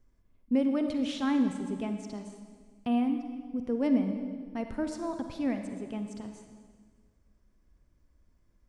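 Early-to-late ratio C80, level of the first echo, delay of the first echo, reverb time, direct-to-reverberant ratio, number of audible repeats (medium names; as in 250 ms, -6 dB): 8.0 dB, no echo, no echo, 1.7 s, 6.0 dB, no echo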